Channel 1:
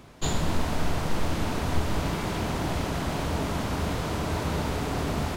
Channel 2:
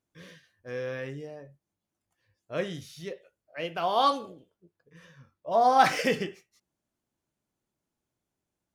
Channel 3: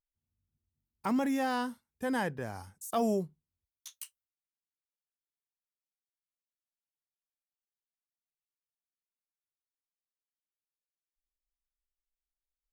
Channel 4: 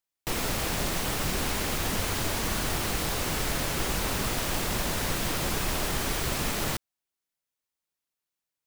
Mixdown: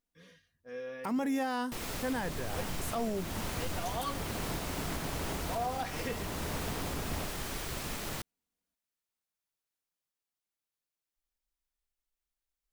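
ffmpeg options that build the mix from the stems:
-filter_complex "[0:a]lowpass=3100,alimiter=limit=0.0708:level=0:latency=1,adelay=1900,volume=0.473[s0];[1:a]aecho=1:1:4.2:0.74,volume=0.299[s1];[2:a]volume=1.41[s2];[3:a]adelay=1450,volume=0.355[s3];[s0][s1][s2][s3]amix=inputs=4:normalize=0,alimiter=level_in=1.12:limit=0.0631:level=0:latency=1:release=274,volume=0.891"

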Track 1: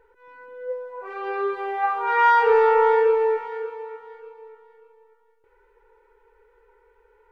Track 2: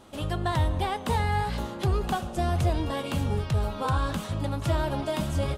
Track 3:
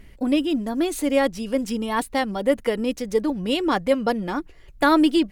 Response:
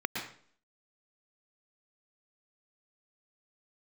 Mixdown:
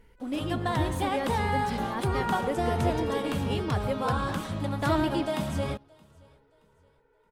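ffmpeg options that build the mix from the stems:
-filter_complex "[0:a]volume=0.398[s0];[1:a]highpass=65,adelay=200,volume=0.631,asplit=3[s1][s2][s3];[s2]volume=0.316[s4];[s3]volume=0.0631[s5];[2:a]volume=0.251,asplit=2[s6][s7];[s7]apad=whole_len=322562[s8];[s0][s8]sidechaincompress=threshold=0.0126:ratio=8:attack=16:release=1120[s9];[3:a]atrim=start_sample=2205[s10];[s4][s10]afir=irnorm=-1:irlink=0[s11];[s5]aecho=0:1:623|1246|1869|2492|3115:1|0.35|0.122|0.0429|0.015[s12];[s9][s1][s6][s11][s12]amix=inputs=5:normalize=0"

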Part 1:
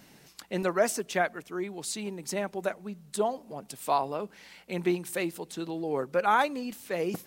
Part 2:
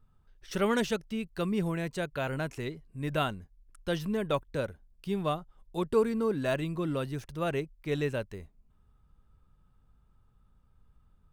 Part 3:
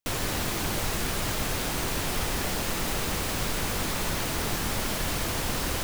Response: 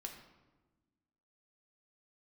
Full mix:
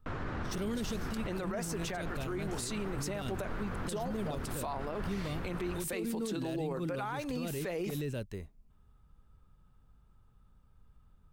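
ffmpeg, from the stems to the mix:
-filter_complex "[0:a]acompressor=threshold=0.0282:ratio=3,adelay=750,volume=1.41[s0];[1:a]asoftclip=type=tanh:threshold=0.1,volume=1.19[s1];[2:a]lowpass=f=1400:t=q:w=2.2,volume=0.562[s2];[s1][s2]amix=inputs=2:normalize=0,acrossover=split=400|3000[s3][s4][s5];[s4]acompressor=threshold=0.00794:ratio=6[s6];[s3][s6][s5]amix=inputs=3:normalize=0,alimiter=level_in=1.58:limit=0.0631:level=0:latency=1:release=14,volume=0.631,volume=1[s7];[s0][s7]amix=inputs=2:normalize=0,alimiter=level_in=1.58:limit=0.0631:level=0:latency=1:release=43,volume=0.631"

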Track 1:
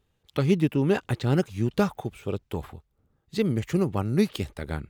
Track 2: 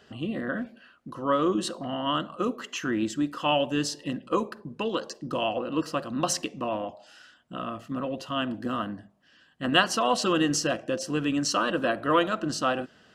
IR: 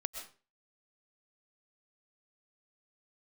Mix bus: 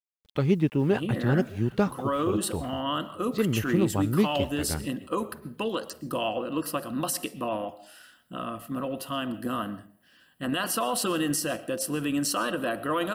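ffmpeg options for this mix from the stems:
-filter_complex "[0:a]highshelf=f=4700:g=-11,acrusher=bits=9:mix=0:aa=0.000001,volume=0.891,asplit=2[s0][s1];[s1]volume=0.0708[s2];[1:a]aexciter=amount=12.5:drive=3.6:freq=9200,alimiter=limit=0.126:level=0:latency=1:release=55,adelay=800,volume=0.75,asplit=2[s3][s4];[s4]volume=0.316[s5];[2:a]atrim=start_sample=2205[s6];[s5][s6]afir=irnorm=-1:irlink=0[s7];[s2]aecho=0:1:615|1230|1845|2460|3075:1|0.39|0.152|0.0593|0.0231[s8];[s0][s3][s7][s8]amix=inputs=4:normalize=0"

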